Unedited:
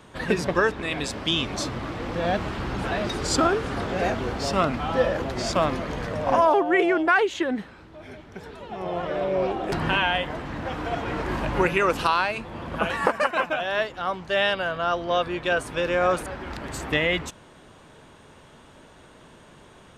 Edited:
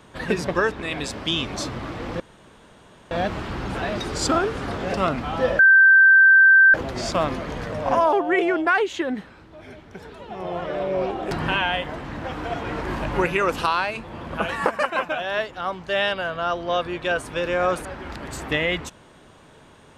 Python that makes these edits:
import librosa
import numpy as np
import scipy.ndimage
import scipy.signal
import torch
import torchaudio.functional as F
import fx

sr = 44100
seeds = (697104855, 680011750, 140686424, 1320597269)

y = fx.edit(x, sr, fx.insert_room_tone(at_s=2.2, length_s=0.91),
    fx.cut(start_s=4.03, length_s=0.47),
    fx.insert_tone(at_s=5.15, length_s=1.15, hz=1560.0, db=-9.0), tone=tone)